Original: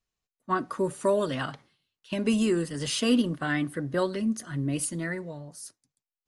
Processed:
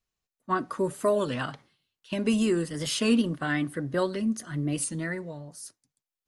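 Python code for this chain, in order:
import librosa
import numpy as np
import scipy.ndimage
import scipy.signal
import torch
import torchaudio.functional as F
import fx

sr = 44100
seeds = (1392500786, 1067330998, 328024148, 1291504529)

y = fx.record_warp(x, sr, rpm=33.33, depth_cents=100.0)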